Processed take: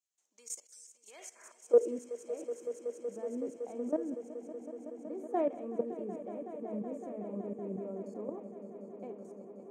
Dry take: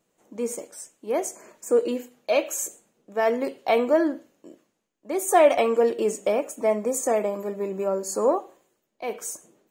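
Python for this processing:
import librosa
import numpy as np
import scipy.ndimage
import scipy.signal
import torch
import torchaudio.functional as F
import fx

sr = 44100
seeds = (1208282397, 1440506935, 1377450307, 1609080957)

y = fx.level_steps(x, sr, step_db=17)
y = fx.filter_sweep_bandpass(y, sr, from_hz=6100.0, to_hz=220.0, start_s=0.98, end_s=2.06, q=1.6)
y = fx.echo_swell(y, sr, ms=187, loudest=5, wet_db=-15.5)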